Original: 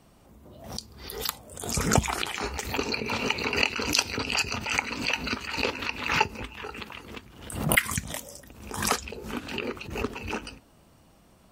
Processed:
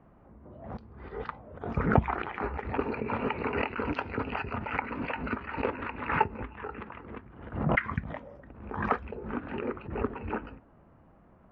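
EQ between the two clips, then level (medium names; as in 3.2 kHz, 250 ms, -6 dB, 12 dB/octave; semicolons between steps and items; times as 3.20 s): low-pass 1.8 kHz 24 dB/octave; 0.0 dB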